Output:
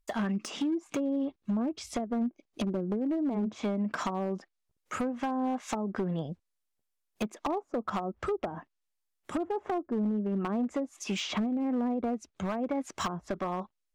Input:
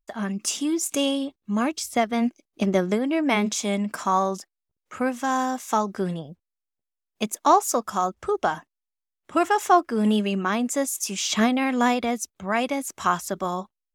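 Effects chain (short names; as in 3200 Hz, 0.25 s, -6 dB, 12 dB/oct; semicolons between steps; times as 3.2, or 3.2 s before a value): treble ducked by the level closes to 450 Hz, closed at -19 dBFS; de-esser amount 95%; high shelf 8900 Hz +4 dB; compressor 12:1, threshold -30 dBFS, peak gain reduction 13 dB; hard clip -28.5 dBFS, distortion -16 dB; gain +3.5 dB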